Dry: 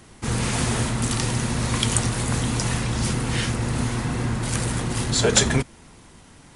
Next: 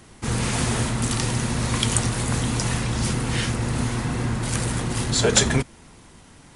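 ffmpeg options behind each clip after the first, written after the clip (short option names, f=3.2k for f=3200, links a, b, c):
-af anull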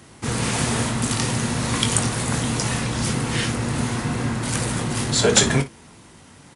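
-filter_complex "[0:a]highpass=73,asplit=2[a][b];[b]aecho=0:1:21|57:0.355|0.178[c];[a][c]amix=inputs=2:normalize=0,volume=1.5dB"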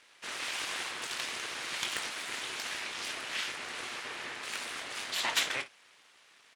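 -af "aeval=exprs='abs(val(0))':c=same,bandpass=f=2.6k:t=q:w=0.95:csg=0,volume=-3.5dB"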